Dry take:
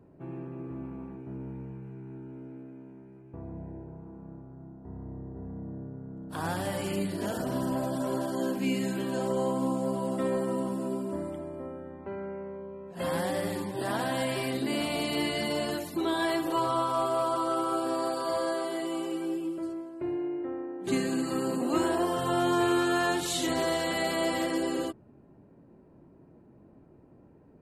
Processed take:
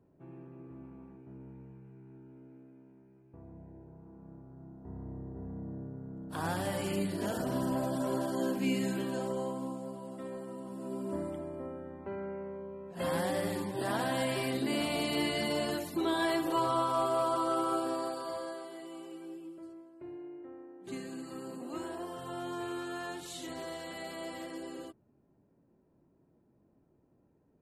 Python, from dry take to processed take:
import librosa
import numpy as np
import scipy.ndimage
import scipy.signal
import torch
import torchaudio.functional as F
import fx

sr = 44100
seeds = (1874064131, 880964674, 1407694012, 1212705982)

y = fx.gain(x, sr, db=fx.line((3.69, -10.0), (4.89, -2.0), (8.94, -2.0), (10.0, -13.0), (10.62, -13.0), (11.13, -2.0), (17.73, -2.0), (18.7, -13.0)))